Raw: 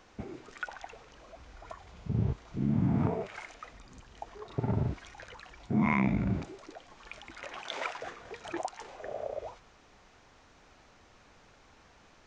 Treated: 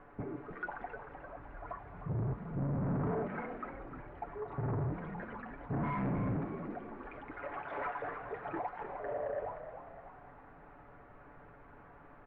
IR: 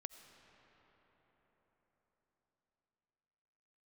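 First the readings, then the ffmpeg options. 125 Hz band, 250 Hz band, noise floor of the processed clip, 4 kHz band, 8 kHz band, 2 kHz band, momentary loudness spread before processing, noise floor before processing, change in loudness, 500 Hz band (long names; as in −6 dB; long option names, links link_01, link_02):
−4.0 dB, −6.5 dB, −56 dBFS, below −15 dB, can't be measured, −4.5 dB, 22 LU, −60 dBFS, −5.5 dB, 0.0 dB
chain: -filter_complex "[0:a]aecho=1:1:7:0.69,aresample=16000,asoftclip=type=tanh:threshold=-34.5dB,aresample=44100,lowpass=frequency=1700:width=0.5412,lowpass=frequency=1700:width=1.3066,asplit=6[link_01][link_02][link_03][link_04][link_05][link_06];[link_02]adelay=305,afreqshift=51,volume=-10dB[link_07];[link_03]adelay=610,afreqshift=102,volume=-16dB[link_08];[link_04]adelay=915,afreqshift=153,volume=-22dB[link_09];[link_05]adelay=1220,afreqshift=204,volume=-28.1dB[link_10];[link_06]adelay=1525,afreqshift=255,volume=-34.1dB[link_11];[link_01][link_07][link_08][link_09][link_10][link_11]amix=inputs=6:normalize=0,volume=2.5dB"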